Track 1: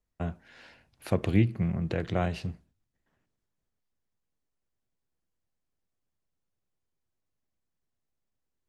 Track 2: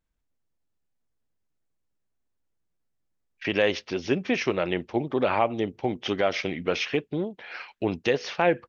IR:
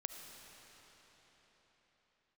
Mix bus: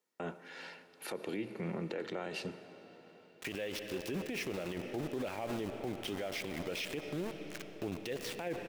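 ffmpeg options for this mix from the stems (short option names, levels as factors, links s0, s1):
-filter_complex "[0:a]highpass=f=220:w=0.5412,highpass=f=220:w=1.3066,aecho=1:1:2.2:0.39,acompressor=threshold=0.0141:ratio=2.5,volume=1.19,asplit=2[s0][s1];[s1]volume=0.531[s2];[1:a]equalizer=f=1100:w=1.6:g=-8.5,aeval=exprs='val(0)*gte(abs(val(0)),0.0211)':c=same,volume=0.562,asplit=2[s3][s4];[s4]volume=0.631[s5];[2:a]atrim=start_sample=2205[s6];[s2][s5]amix=inputs=2:normalize=0[s7];[s7][s6]afir=irnorm=-1:irlink=0[s8];[s0][s3][s8]amix=inputs=3:normalize=0,alimiter=level_in=1.78:limit=0.0631:level=0:latency=1:release=50,volume=0.562"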